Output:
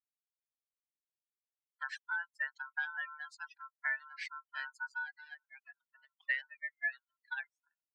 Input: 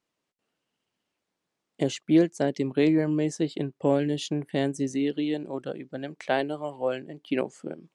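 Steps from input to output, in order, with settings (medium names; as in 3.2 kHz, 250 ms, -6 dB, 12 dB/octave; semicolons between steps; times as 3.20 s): expander on every frequency bin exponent 3; reverb removal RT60 0.91 s; compression 10:1, threshold -30 dBFS, peak gain reduction 13.5 dB; ring modulator 1.2 kHz; ladder band-pass 2.1 kHz, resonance 55%; trim +10.5 dB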